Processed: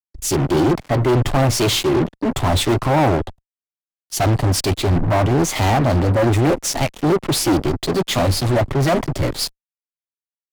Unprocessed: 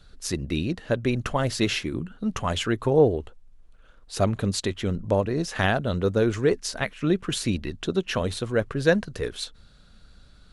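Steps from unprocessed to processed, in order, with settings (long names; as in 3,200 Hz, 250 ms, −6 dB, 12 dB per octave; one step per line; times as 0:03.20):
notch filter 500 Hz, Q 12
formants moved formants +3 semitones
parametric band 1,900 Hz +4 dB 0.34 octaves
phaser with its sweep stopped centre 310 Hz, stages 8
fuzz pedal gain 43 dB, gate −42 dBFS
high-shelf EQ 2,500 Hz −8.5 dB
multiband upward and downward expander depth 70%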